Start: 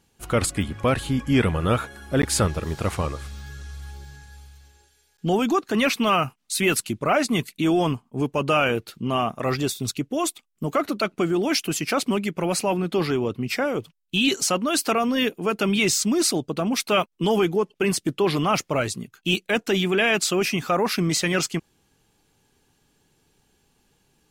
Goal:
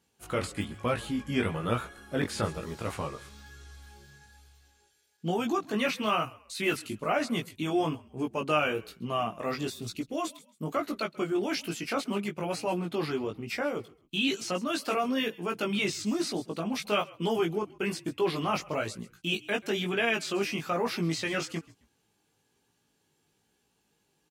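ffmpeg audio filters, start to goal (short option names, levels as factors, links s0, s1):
-filter_complex "[0:a]highpass=58,lowshelf=f=120:g=-6.5,asplit=3[s0][s1][s2];[s1]adelay=134,afreqshift=-51,volume=0.075[s3];[s2]adelay=268,afreqshift=-102,volume=0.0232[s4];[s0][s3][s4]amix=inputs=3:normalize=0,flanger=delay=17:depth=2.9:speed=1.1,atempo=1,acrossover=split=4700[s5][s6];[s6]acompressor=threshold=0.0126:ratio=4:attack=1:release=60[s7];[s5][s7]amix=inputs=2:normalize=0,volume=0.631"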